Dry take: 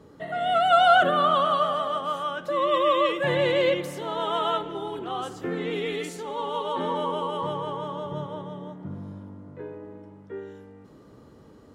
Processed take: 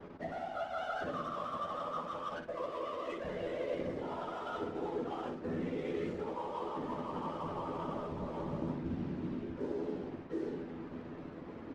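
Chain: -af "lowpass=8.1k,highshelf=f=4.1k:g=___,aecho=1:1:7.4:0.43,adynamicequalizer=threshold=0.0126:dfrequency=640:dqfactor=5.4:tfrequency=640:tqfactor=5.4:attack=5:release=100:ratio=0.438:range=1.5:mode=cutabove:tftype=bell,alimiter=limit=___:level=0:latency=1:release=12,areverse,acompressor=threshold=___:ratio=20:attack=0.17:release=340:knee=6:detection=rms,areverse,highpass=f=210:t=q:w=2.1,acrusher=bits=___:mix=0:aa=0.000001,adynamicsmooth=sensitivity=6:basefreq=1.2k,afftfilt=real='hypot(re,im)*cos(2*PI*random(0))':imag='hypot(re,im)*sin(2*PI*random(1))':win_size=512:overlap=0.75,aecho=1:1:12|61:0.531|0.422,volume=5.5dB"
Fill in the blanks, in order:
-2.5, -9.5dB, -33dB, 7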